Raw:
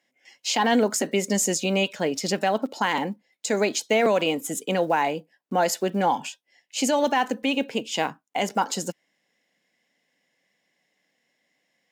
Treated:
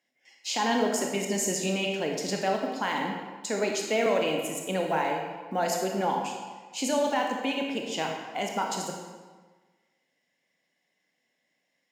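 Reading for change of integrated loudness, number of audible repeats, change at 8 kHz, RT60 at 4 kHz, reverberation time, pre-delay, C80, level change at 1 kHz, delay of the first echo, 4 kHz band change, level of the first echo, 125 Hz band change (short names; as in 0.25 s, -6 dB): -4.5 dB, none, -4.5 dB, 1.0 s, 1.4 s, 25 ms, 5.0 dB, -4.0 dB, none, -4.5 dB, none, -4.5 dB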